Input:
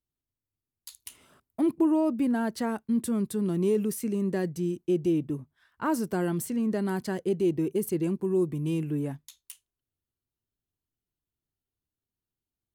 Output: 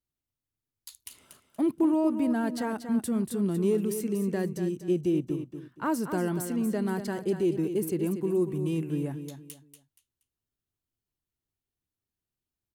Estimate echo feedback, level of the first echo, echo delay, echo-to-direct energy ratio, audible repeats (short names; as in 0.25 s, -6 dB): 28%, -9.0 dB, 0.237 s, -8.5 dB, 3